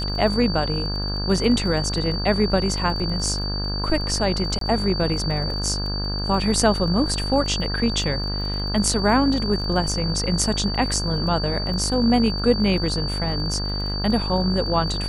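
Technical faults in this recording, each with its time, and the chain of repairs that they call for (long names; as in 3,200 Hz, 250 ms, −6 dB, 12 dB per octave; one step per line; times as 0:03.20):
mains buzz 50 Hz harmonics 34 −27 dBFS
surface crackle 28 per second −31 dBFS
whistle 4,600 Hz −28 dBFS
0:04.59–0:04.61: drop-out 23 ms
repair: click removal
notch filter 4,600 Hz, Q 30
hum removal 50 Hz, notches 34
repair the gap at 0:04.59, 23 ms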